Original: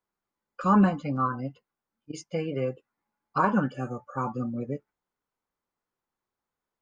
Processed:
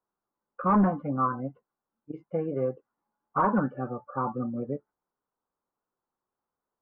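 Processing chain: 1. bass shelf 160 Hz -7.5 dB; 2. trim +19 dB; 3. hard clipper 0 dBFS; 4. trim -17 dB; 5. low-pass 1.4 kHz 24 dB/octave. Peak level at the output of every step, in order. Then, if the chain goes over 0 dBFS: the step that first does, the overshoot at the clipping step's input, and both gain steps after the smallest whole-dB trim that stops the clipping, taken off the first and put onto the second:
-11.5 dBFS, +7.5 dBFS, 0.0 dBFS, -17.0 dBFS, -15.0 dBFS; step 2, 7.5 dB; step 2 +11 dB, step 4 -9 dB

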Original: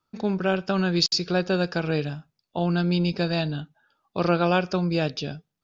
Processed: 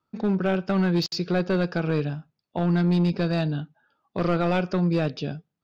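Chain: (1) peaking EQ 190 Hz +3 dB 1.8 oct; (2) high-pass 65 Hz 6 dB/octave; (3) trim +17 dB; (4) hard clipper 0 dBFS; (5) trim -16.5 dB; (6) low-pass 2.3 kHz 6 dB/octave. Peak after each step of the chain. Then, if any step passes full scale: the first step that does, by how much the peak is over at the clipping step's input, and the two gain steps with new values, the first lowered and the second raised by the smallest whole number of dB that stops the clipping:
-7.0 dBFS, -7.0 dBFS, +10.0 dBFS, 0.0 dBFS, -16.5 dBFS, -16.5 dBFS; step 3, 10.0 dB; step 3 +7 dB, step 5 -6.5 dB

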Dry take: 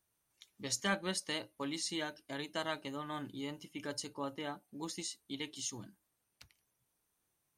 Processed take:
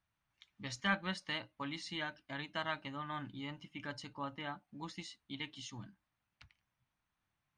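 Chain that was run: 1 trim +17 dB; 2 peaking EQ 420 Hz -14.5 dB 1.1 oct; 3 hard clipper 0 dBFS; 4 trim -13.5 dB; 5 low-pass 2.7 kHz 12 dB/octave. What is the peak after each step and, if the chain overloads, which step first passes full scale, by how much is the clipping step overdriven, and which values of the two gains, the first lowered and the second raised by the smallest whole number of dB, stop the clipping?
-3.5 dBFS, -5.0 dBFS, -5.0 dBFS, -18.5 dBFS, -20.5 dBFS; nothing clips

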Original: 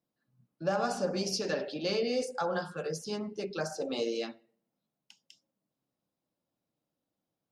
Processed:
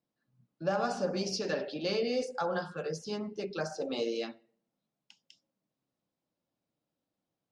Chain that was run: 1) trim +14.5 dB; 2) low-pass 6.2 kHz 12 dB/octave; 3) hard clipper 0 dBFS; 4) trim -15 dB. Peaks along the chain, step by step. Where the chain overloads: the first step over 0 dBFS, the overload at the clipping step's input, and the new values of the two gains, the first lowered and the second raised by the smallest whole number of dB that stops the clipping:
-4.5 dBFS, -4.5 dBFS, -4.5 dBFS, -19.5 dBFS; nothing clips

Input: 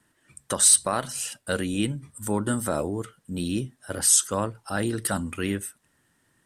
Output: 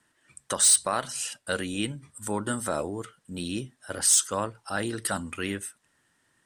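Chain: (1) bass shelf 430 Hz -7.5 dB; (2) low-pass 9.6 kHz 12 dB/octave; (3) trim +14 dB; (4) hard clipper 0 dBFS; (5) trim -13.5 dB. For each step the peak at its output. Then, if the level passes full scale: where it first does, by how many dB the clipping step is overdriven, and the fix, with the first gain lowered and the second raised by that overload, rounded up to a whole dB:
-7.5 dBFS, -8.5 dBFS, +5.5 dBFS, 0.0 dBFS, -13.5 dBFS; step 3, 5.5 dB; step 3 +8 dB, step 5 -7.5 dB

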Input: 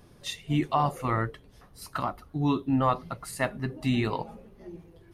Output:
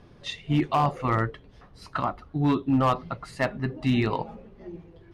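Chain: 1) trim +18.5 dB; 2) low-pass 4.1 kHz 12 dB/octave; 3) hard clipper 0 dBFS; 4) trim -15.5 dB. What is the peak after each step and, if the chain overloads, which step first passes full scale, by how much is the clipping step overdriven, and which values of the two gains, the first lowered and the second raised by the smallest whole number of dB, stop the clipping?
+7.0 dBFS, +7.0 dBFS, 0.0 dBFS, -15.5 dBFS; step 1, 7.0 dB; step 1 +11.5 dB, step 4 -8.5 dB

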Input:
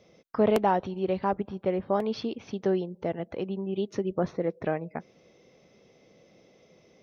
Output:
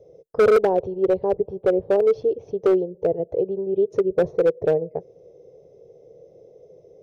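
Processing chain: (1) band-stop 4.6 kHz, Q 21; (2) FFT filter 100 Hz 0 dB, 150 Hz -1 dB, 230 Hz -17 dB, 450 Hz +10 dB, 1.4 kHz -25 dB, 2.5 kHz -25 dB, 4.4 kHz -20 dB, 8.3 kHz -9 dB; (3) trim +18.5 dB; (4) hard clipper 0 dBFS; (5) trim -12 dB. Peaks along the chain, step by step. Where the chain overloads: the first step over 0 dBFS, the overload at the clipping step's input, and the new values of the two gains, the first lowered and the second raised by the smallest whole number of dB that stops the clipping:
-13.0 dBFS, -9.5 dBFS, +9.0 dBFS, 0.0 dBFS, -12.0 dBFS; step 3, 9.0 dB; step 3 +9.5 dB, step 5 -3 dB

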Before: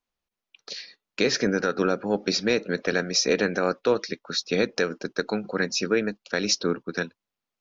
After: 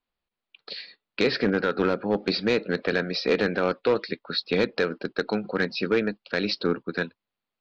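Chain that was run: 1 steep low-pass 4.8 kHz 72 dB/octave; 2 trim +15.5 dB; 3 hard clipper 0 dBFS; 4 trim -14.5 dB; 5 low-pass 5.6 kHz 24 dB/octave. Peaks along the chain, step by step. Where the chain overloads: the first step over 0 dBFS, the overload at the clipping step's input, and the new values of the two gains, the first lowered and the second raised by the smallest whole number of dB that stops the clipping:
-8.5 dBFS, +7.0 dBFS, 0.0 dBFS, -14.5 dBFS, -13.0 dBFS; step 2, 7.0 dB; step 2 +8.5 dB, step 4 -7.5 dB

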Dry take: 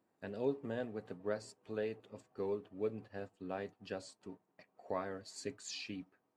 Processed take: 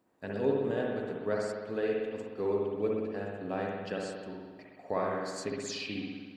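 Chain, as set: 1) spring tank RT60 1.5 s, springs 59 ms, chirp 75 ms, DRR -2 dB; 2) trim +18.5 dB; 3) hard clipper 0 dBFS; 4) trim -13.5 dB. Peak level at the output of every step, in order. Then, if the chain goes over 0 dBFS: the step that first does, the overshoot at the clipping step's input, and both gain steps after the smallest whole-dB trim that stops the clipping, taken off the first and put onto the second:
-20.0 dBFS, -1.5 dBFS, -1.5 dBFS, -15.0 dBFS; nothing clips

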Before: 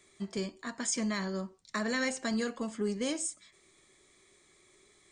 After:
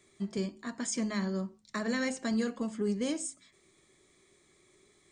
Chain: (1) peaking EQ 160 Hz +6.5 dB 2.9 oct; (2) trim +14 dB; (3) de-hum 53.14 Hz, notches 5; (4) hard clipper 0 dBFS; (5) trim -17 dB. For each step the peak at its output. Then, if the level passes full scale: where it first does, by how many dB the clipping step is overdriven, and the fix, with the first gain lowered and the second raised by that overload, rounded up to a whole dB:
-18.5 dBFS, -4.5 dBFS, -4.0 dBFS, -4.0 dBFS, -21.0 dBFS; nothing clips

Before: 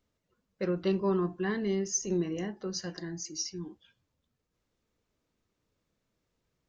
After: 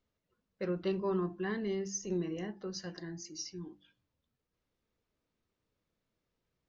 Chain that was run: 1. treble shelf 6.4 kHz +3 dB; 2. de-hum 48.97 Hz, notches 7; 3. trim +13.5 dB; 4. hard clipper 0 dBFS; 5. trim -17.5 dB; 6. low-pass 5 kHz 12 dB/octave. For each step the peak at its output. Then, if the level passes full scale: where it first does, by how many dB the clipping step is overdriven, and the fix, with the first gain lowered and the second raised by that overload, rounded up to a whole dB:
-17.5 dBFS, -18.0 dBFS, -4.5 dBFS, -4.5 dBFS, -22.0 dBFS, -22.5 dBFS; nothing clips

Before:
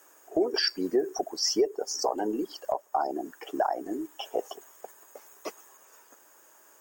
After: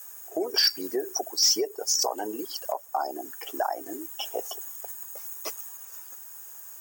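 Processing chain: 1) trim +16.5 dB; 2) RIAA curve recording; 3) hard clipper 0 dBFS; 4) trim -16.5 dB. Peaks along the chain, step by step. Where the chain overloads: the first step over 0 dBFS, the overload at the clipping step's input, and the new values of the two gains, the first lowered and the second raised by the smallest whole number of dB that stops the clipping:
+1.5 dBFS, +9.0 dBFS, 0.0 dBFS, -16.5 dBFS; step 1, 9.0 dB; step 1 +7.5 dB, step 4 -7.5 dB

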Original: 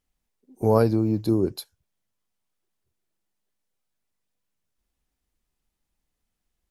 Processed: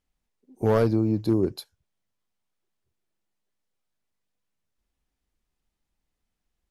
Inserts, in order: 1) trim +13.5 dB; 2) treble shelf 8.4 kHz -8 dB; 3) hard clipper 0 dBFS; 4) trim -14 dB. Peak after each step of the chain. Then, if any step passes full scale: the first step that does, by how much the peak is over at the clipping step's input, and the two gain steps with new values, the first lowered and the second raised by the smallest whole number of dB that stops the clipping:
+8.5 dBFS, +8.5 dBFS, 0.0 dBFS, -14.0 dBFS; step 1, 8.5 dB; step 1 +4.5 dB, step 4 -5 dB

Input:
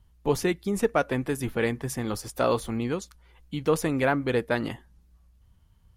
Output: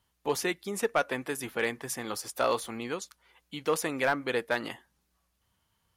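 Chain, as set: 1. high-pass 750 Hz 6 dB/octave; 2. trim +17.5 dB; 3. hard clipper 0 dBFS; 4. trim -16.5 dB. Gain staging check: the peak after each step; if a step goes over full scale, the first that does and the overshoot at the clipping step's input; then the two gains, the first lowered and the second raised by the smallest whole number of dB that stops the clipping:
-11.5 dBFS, +6.0 dBFS, 0.0 dBFS, -16.5 dBFS; step 2, 6.0 dB; step 2 +11.5 dB, step 4 -10.5 dB

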